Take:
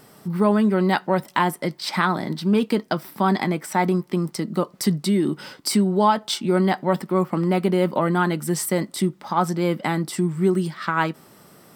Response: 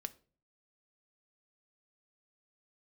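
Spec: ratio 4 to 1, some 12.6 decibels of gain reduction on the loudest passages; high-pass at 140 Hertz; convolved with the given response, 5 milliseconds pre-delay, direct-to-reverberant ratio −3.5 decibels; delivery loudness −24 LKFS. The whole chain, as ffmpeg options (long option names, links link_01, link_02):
-filter_complex "[0:a]highpass=140,acompressor=threshold=-30dB:ratio=4,asplit=2[link_01][link_02];[1:a]atrim=start_sample=2205,adelay=5[link_03];[link_02][link_03]afir=irnorm=-1:irlink=0,volume=6.5dB[link_04];[link_01][link_04]amix=inputs=2:normalize=0,volume=2.5dB"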